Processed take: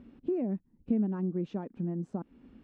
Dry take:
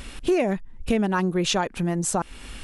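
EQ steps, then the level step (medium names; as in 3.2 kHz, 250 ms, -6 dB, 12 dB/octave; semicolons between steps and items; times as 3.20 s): band-pass filter 240 Hz, Q 2.2; distance through air 68 m; -3.0 dB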